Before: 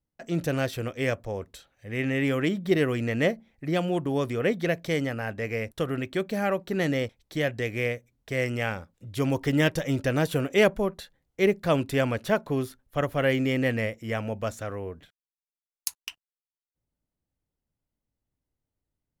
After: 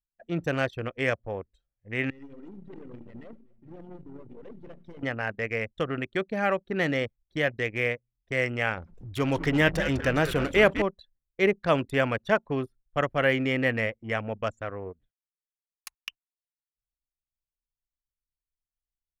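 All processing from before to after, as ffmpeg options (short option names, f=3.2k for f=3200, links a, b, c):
-filter_complex "[0:a]asettb=1/sr,asplit=3[a][b][c];[a]atrim=end=2.104[d];[b]atrim=start=2.1:end=5.03,asetpts=PTS-STARTPTS,afade=t=in:d=0.004:c=qsin,afade=t=out:st=2.926:d=0.004:c=qsin,aeval=exprs='(tanh(79.4*val(0)+0.35)-tanh(0.35))/79.4':c=same,aecho=1:1:88|249|563:0.299|0.282|0.282,atrim=end_sample=129213[e];[c]atrim=start=5.026[f];[d][e]acrossfade=d=0.004:c1=hsin:c2=qsin[g];[g][f]acrossfade=d=0.004:c1=qsin:c2=hsin,asettb=1/sr,asplit=3[h][i][j];[h]atrim=end=8.774[k];[i]atrim=start=8.77:end=10.82,asetpts=PTS-STARTPTS,afade=t=in:d=0.004:c=qsin,afade=t=out:st=2.046:d=0.004:c=qsin,aeval=exprs='val(0)+0.5*0.015*sgn(val(0))':c=same,asplit=7[l][m][n][o][p][q][r];[m]adelay=201,afreqshift=-110,volume=-10dB[s];[n]adelay=402,afreqshift=-220,volume=-15.2dB[t];[o]adelay=603,afreqshift=-330,volume=-20.4dB[u];[p]adelay=804,afreqshift=-440,volume=-25.6dB[v];[q]adelay=1005,afreqshift=-550,volume=-30.8dB[w];[r]adelay=1206,afreqshift=-660,volume=-36dB[x];[l][s][t][u][v][w][x]amix=inputs=7:normalize=0,atrim=end_sample=90405[y];[j]atrim=start=10.816[z];[k][y]acrossfade=d=0.004:c1=hsin:c2=qsin[aa];[aa][z]acrossfade=d=0.004:c1=qsin:c2=hsin,anlmdn=15.8,acrossover=split=2600[ab][ac];[ac]acompressor=threshold=-45dB:ratio=4:attack=1:release=60[ad];[ab][ad]amix=inputs=2:normalize=0,tiltshelf=f=840:g=-5,volume=2dB"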